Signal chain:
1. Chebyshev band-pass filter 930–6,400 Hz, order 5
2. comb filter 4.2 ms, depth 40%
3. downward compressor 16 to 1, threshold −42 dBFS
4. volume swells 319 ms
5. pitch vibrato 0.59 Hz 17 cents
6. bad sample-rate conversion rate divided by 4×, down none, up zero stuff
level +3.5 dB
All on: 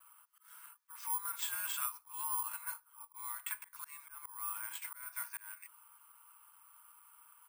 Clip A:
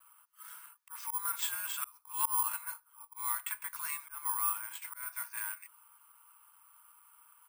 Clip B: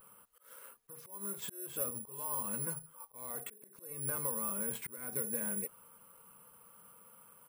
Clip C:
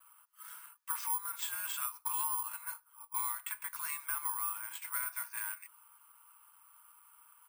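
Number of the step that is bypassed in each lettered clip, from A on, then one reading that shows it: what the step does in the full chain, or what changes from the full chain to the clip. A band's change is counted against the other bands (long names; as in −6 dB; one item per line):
3, average gain reduction 3.5 dB
1, 8 kHz band +8.0 dB
4, change in crest factor −2.0 dB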